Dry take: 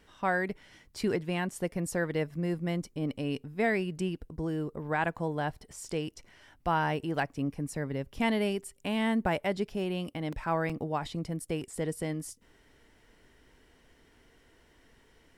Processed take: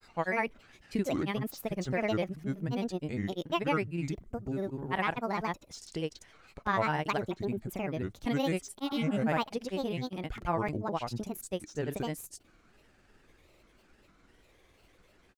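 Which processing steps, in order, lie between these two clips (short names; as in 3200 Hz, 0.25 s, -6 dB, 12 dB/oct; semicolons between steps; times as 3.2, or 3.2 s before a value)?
grains, pitch spread up and down by 7 st; spectral repair 8.88–9.2, 630–1900 Hz both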